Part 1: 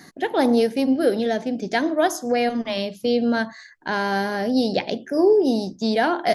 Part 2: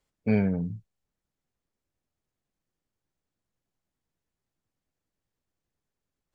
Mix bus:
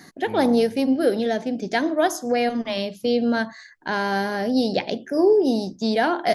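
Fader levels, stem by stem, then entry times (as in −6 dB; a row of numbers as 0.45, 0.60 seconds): −0.5, −13.0 decibels; 0.00, 0.00 seconds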